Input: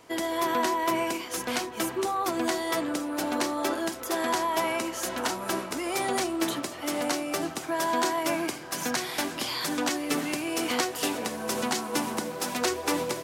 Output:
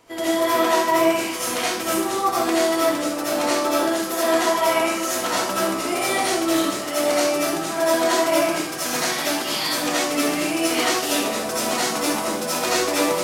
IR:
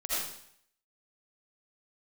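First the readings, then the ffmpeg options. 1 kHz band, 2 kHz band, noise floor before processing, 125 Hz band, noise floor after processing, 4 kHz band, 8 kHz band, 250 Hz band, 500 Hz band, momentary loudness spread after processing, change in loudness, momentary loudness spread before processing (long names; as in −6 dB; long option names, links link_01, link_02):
+6.5 dB, +7.5 dB, −39 dBFS, +4.5 dB, −27 dBFS, +8.0 dB, +8.0 dB, +6.5 dB, +9.5 dB, 4 LU, +8.0 dB, 5 LU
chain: -filter_complex "[1:a]atrim=start_sample=2205,afade=type=out:start_time=0.32:duration=0.01,atrim=end_sample=14553[link_01];[0:a][link_01]afir=irnorm=-1:irlink=0,volume=1.5dB"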